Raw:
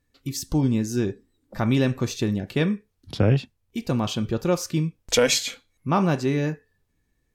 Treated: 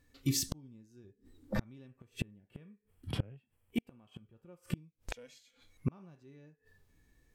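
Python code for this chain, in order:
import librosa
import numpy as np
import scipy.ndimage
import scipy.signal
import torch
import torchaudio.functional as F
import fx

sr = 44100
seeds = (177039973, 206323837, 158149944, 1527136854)

y = fx.spec_box(x, sr, start_s=1.88, length_s=2.89, low_hz=3400.0, high_hz=7400.0, gain_db=-11)
y = fx.low_shelf(y, sr, hz=150.0, db=-8.5, at=(3.4, 4.16))
y = fx.hpss(y, sr, part='percussive', gain_db=-9)
y = fx.low_shelf(y, sr, hz=410.0, db=6.0, at=(1.04, 1.6))
y = fx.gate_flip(y, sr, shuts_db=-25.0, range_db=-38)
y = y * 10.0 ** (6.0 / 20.0)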